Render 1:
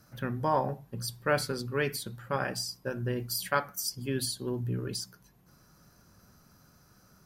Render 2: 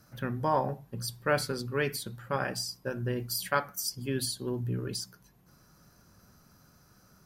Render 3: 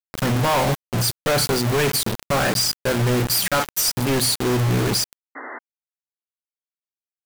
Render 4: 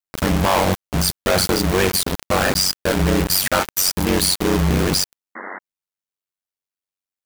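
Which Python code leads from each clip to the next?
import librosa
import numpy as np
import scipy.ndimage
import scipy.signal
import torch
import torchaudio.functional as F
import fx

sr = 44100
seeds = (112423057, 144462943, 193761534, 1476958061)

y1 = x
y2 = fx.quant_companded(y1, sr, bits=2)
y2 = fx.spec_paint(y2, sr, seeds[0], shape='noise', start_s=5.35, length_s=0.24, low_hz=240.0, high_hz=2100.0, level_db=-42.0)
y2 = y2 * librosa.db_to_amplitude(7.5)
y3 = y2 * np.sin(2.0 * np.pi * 47.0 * np.arange(len(y2)) / sr)
y3 = y3 * librosa.db_to_amplitude(5.0)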